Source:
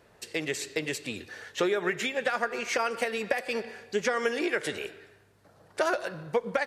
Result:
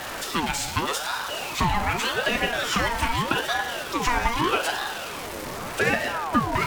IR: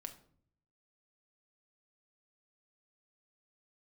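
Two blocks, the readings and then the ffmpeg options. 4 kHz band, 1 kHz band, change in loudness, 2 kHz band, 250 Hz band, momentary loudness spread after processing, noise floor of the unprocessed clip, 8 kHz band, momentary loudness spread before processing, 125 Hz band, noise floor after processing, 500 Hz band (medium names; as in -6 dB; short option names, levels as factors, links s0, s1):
+9.5 dB, +10.0 dB, +5.0 dB, +6.0 dB, +5.5 dB, 7 LU, -60 dBFS, +8.0 dB, 9 LU, +13.5 dB, -34 dBFS, -1.0 dB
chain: -filter_complex "[0:a]aeval=exprs='val(0)+0.5*0.0299*sgn(val(0))':c=same[s0];[1:a]atrim=start_sample=2205,asetrate=36162,aresample=44100[s1];[s0][s1]afir=irnorm=-1:irlink=0,aeval=exprs='val(0)*sin(2*PI*830*n/s+830*0.5/0.83*sin(2*PI*0.83*n/s))':c=same,volume=2.66"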